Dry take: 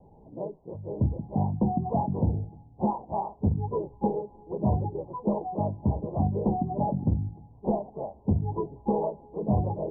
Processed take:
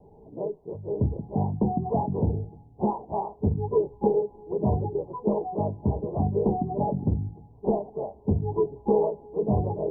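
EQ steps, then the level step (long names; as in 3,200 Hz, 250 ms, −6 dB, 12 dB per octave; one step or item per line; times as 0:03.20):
parametric band 430 Hz +9.5 dB 0.36 octaves
notch filter 510 Hz, Q 14
0.0 dB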